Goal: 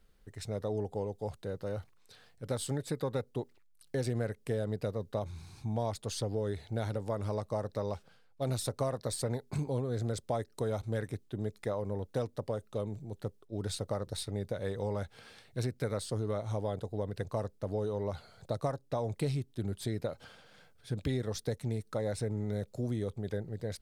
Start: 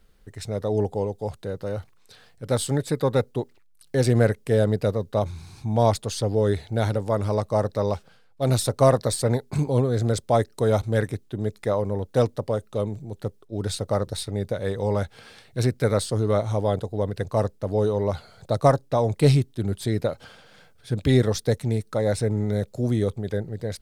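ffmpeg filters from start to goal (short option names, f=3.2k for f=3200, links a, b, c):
-af "acompressor=threshold=-23dB:ratio=5,volume=-7dB"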